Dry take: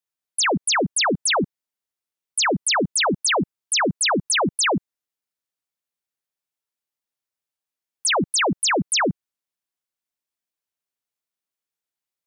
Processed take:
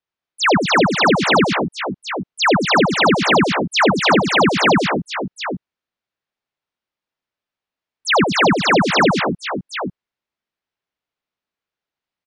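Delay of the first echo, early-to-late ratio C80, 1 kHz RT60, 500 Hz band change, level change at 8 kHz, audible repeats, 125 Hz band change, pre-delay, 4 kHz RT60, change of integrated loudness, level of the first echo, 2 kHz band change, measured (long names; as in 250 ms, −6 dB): 85 ms, no reverb audible, no reverb audible, +8.5 dB, −7.5 dB, 4, +9.0 dB, no reverb audible, no reverb audible, +5.0 dB, −6.0 dB, +7.0 dB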